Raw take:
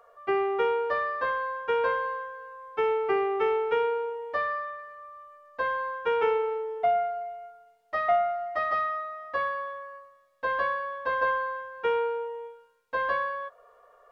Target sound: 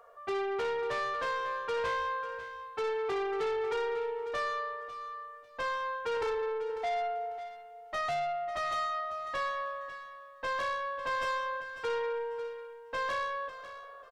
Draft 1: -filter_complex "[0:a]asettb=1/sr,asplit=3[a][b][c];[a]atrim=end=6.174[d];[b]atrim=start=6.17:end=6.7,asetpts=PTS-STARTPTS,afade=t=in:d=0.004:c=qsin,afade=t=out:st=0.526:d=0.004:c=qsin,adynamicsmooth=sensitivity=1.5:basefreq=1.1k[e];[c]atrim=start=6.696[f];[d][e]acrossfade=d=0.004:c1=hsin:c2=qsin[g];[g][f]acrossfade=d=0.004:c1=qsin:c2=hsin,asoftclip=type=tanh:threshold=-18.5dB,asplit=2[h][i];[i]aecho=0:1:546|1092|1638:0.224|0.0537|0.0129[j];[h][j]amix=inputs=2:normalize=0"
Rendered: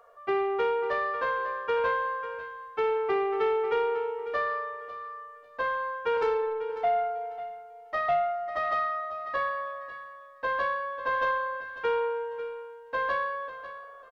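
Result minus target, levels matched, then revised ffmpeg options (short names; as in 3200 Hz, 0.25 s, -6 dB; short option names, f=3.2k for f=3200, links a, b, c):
soft clip: distortion -13 dB
-filter_complex "[0:a]asettb=1/sr,asplit=3[a][b][c];[a]atrim=end=6.174[d];[b]atrim=start=6.17:end=6.7,asetpts=PTS-STARTPTS,afade=t=in:d=0.004:c=qsin,afade=t=out:st=0.526:d=0.004:c=qsin,adynamicsmooth=sensitivity=1.5:basefreq=1.1k[e];[c]atrim=start=6.696[f];[d][e]acrossfade=d=0.004:c1=hsin:c2=qsin[g];[g][f]acrossfade=d=0.004:c1=qsin:c2=hsin,asoftclip=type=tanh:threshold=-30dB,asplit=2[h][i];[i]aecho=0:1:546|1092|1638:0.224|0.0537|0.0129[j];[h][j]amix=inputs=2:normalize=0"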